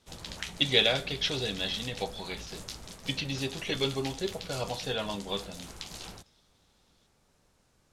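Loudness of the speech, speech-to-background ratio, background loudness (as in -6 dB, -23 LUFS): -31.0 LUFS, 11.5 dB, -42.5 LUFS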